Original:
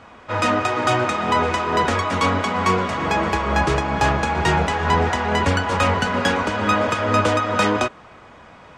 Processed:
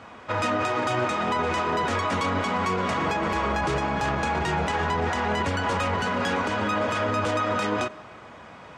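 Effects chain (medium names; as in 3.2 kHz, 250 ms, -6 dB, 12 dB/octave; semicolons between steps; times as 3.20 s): high-pass 75 Hz; peak limiter -17 dBFS, peak gain reduction 12 dB; on a send: reverberation RT60 1.6 s, pre-delay 45 ms, DRR 22 dB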